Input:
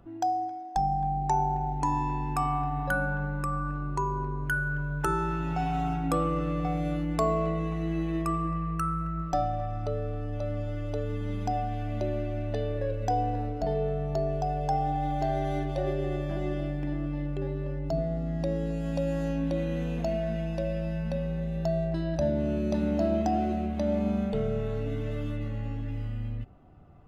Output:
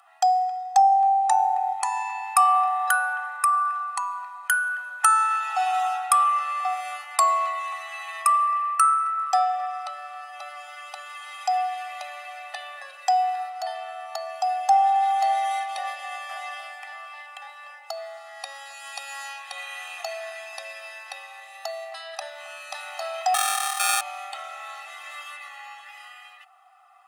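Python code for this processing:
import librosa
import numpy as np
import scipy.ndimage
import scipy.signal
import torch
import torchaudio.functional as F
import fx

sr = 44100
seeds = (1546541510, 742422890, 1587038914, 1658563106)

y = fx.peak_eq(x, sr, hz=360.0, db=-15.0, octaves=0.77, at=(18.73, 19.52))
y = fx.sample_hold(y, sr, seeds[0], rate_hz=1000.0, jitter_pct=0, at=(23.34, 24.01))
y = scipy.signal.sosfilt(scipy.signal.cheby1(6, 1.0, 770.0, 'highpass', fs=sr, output='sos'), y)
y = fx.peak_eq(y, sr, hz=9200.0, db=12.5, octaves=0.46)
y = y + 0.95 * np.pad(y, (int(1.6 * sr / 1000.0), 0))[:len(y)]
y = F.gain(torch.from_numpy(y), 8.5).numpy()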